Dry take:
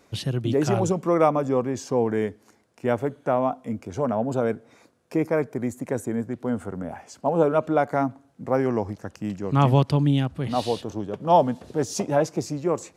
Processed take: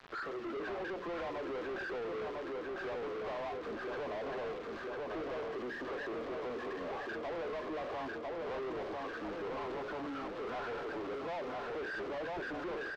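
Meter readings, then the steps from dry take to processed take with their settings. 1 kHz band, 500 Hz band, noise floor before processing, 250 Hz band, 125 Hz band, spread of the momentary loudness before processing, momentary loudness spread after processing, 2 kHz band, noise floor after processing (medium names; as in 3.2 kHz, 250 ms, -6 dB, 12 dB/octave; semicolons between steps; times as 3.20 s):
-15.0 dB, -14.0 dB, -60 dBFS, -18.5 dB, -30.0 dB, 11 LU, 2 LU, -3.5 dB, -43 dBFS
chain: knee-point frequency compression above 1 kHz 4:1; compression 12:1, threshold -27 dBFS, peak gain reduction 15.5 dB; ladder high-pass 320 Hz, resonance 45%; bass shelf 440 Hz -8 dB; hum notches 60/120/180/240/300/360/420/480/540 Hz; bit crusher 10-bit; feedback delay 999 ms, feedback 52%, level -7 dB; power-law waveshaper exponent 0.5; saturation -38.5 dBFS, distortion -12 dB; distance through air 210 m; trim +2 dB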